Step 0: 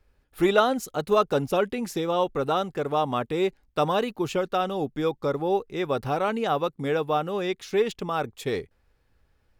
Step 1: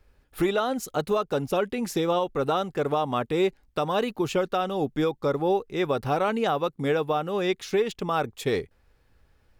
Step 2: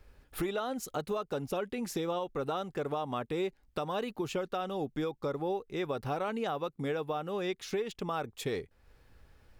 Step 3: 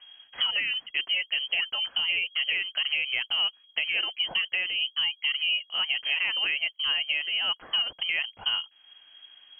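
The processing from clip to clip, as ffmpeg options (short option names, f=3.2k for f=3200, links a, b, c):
-af "alimiter=limit=-19dB:level=0:latency=1:release=447,volume=4dB"
-af "acompressor=threshold=-43dB:ratio=2,volume=2.5dB"
-af "lowpass=f=2.8k:t=q:w=0.5098,lowpass=f=2.8k:t=q:w=0.6013,lowpass=f=2.8k:t=q:w=0.9,lowpass=f=2.8k:t=q:w=2.563,afreqshift=-3300,volume=6dB"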